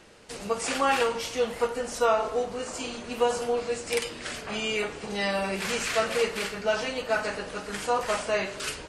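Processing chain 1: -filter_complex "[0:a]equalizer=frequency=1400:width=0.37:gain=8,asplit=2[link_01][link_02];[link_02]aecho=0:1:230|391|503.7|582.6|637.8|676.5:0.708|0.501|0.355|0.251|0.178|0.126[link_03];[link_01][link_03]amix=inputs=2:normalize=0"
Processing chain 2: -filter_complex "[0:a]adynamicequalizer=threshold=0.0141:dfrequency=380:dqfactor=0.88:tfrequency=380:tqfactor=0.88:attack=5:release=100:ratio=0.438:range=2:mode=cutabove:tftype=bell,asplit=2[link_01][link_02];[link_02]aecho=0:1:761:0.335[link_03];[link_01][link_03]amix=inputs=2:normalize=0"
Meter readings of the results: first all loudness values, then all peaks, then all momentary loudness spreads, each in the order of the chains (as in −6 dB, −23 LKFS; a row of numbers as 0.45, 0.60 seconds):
−19.5, −28.5 LKFS; −4.5, −11.0 dBFS; 6, 7 LU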